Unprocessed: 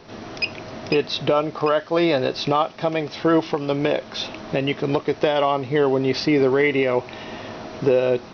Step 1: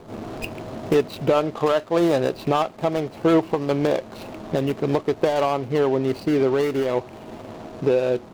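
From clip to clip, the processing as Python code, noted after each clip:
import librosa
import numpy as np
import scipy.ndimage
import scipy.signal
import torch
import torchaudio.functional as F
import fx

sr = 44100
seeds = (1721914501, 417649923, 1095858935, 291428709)

y = scipy.signal.medfilt(x, 25)
y = fx.rider(y, sr, range_db=4, speed_s=2.0)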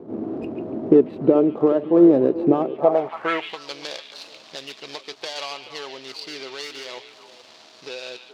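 y = fx.echo_stepped(x, sr, ms=143, hz=2800.0, octaves=-1.4, feedback_pct=70, wet_db=-6)
y = fx.filter_sweep_bandpass(y, sr, from_hz=310.0, to_hz=4600.0, start_s=2.67, end_s=3.62, q=2.1)
y = F.gain(torch.from_numpy(y), 9.0).numpy()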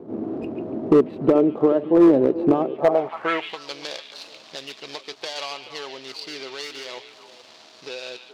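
y = np.clip(x, -10.0 ** (-8.5 / 20.0), 10.0 ** (-8.5 / 20.0))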